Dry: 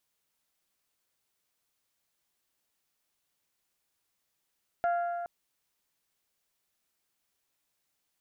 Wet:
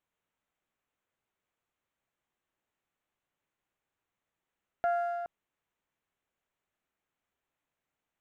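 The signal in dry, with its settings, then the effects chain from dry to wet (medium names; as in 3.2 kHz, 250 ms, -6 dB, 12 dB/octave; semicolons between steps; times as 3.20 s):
metal hit bell, length 0.42 s, lowest mode 694 Hz, decay 2.40 s, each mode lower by 10 dB, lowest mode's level -24 dB
local Wiener filter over 9 samples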